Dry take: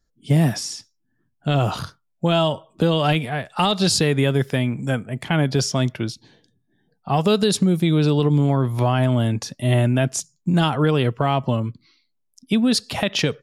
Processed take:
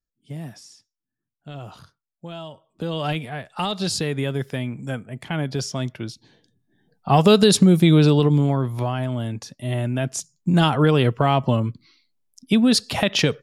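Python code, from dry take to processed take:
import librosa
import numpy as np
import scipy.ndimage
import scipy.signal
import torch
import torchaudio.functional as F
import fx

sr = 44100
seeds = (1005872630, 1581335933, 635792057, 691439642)

y = fx.gain(x, sr, db=fx.line((2.53, -17.0), (3.01, -6.0), (5.98, -6.0), (7.13, 4.0), (7.94, 4.0), (9.04, -7.0), (9.77, -7.0), (10.63, 1.5)))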